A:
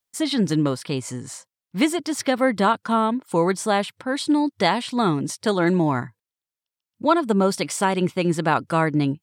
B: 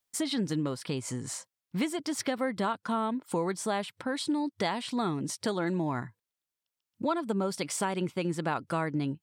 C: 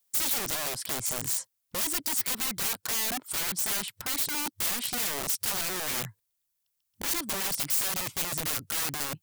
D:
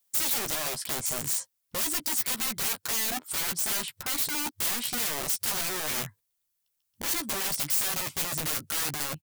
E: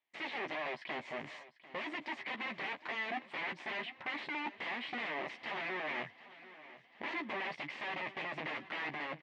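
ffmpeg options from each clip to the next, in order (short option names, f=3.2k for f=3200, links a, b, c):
-af "acompressor=threshold=-32dB:ratio=2.5"
-af "asubboost=boost=3.5:cutoff=120,aeval=exprs='(mod(35.5*val(0)+1,2)-1)/35.5':c=same,crystalizer=i=2:c=0"
-filter_complex "[0:a]asplit=2[a][b];[b]adelay=13,volume=-8dB[c];[a][c]amix=inputs=2:normalize=0"
-af "asoftclip=type=tanh:threshold=-28dB,highpass=310,equalizer=f=480:t=q:w=4:g=-5,equalizer=f=1.4k:t=q:w=4:g=-10,equalizer=f=2k:t=q:w=4:g=6,lowpass=f=2.7k:w=0.5412,lowpass=f=2.7k:w=1.3066,aecho=1:1:745|1490|2235|2980|3725:0.133|0.0787|0.0464|0.0274|0.0162"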